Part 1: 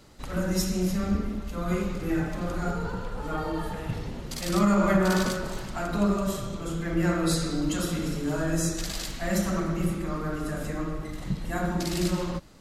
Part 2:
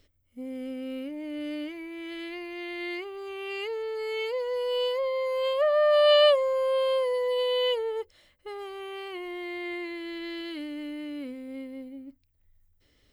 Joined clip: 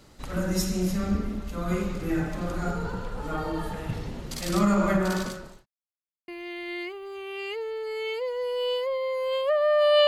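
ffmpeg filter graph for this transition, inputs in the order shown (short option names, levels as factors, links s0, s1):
-filter_complex "[0:a]apad=whole_dur=10.07,atrim=end=10.07,asplit=2[s0][s1];[s0]atrim=end=5.66,asetpts=PTS-STARTPTS,afade=t=out:st=4.52:d=1.14:c=qsin[s2];[s1]atrim=start=5.66:end=6.28,asetpts=PTS-STARTPTS,volume=0[s3];[1:a]atrim=start=2.4:end=6.19,asetpts=PTS-STARTPTS,afade=t=in:d=0.004:c=hsin[s4];[s2][s3][s4]concat=n=3:v=0:a=1"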